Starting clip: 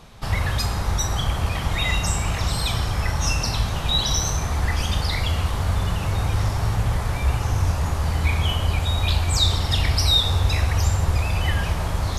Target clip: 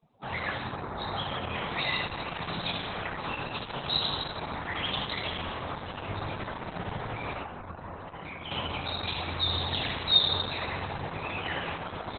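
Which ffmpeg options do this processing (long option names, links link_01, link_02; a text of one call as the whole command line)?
ffmpeg -i in.wav -filter_complex "[0:a]lowpass=8300,flanger=delay=19.5:depth=4.9:speed=0.99,asplit=3[link_01][link_02][link_03];[link_01]afade=type=out:start_time=4.73:duration=0.02[link_04];[link_02]adynamicequalizer=threshold=0.00251:dfrequency=3200:dqfactor=7.8:tfrequency=3200:tqfactor=7.8:attack=5:release=100:ratio=0.375:range=3.5:mode=boostabove:tftype=bell,afade=type=in:start_time=4.73:duration=0.02,afade=type=out:start_time=5.22:duration=0.02[link_05];[link_03]afade=type=in:start_time=5.22:duration=0.02[link_06];[link_04][link_05][link_06]amix=inputs=3:normalize=0,highpass=220,asplit=3[link_07][link_08][link_09];[link_07]afade=type=out:start_time=0.57:duration=0.02[link_10];[link_08]highshelf=frequency=2100:gain=-8.5,afade=type=in:start_time=0.57:duration=0.02,afade=type=out:start_time=0.98:duration=0.02[link_11];[link_09]afade=type=in:start_time=0.98:duration=0.02[link_12];[link_10][link_11][link_12]amix=inputs=3:normalize=0,aecho=1:1:81|162|243|324|405|486|567:0.501|0.281|0.157|0.088|0.0493|0.0276|0.0155,asettb=1/sr,asplit=3[link_13][link_14][link_15];[link_13]atrim=end=7.424[link_16];[link_14]atrim=start=7.42:end=8.51,asetpts=PTS-STARTPTS,afade=type=in:duration=0.004:curve=qsin,afade=type=out:start_time=1.086:duration=0.004:curve=qsin,acompressor=threshold=-36dB:ratio=3[link_17];[link_15]atrim=start=8.506[link_18];[link_16][link_17]acrossfade=duration=0.004:curve1=hsin:curve2=qsin[link_19];[link_19][link_18]acrossfade=duration=0.004:curve1=qsin:curve2=hsin,afftdn=noise_reduction=25:noise_floor=-44" -ar 48000 -c:a libopus -b:a 8k out.opus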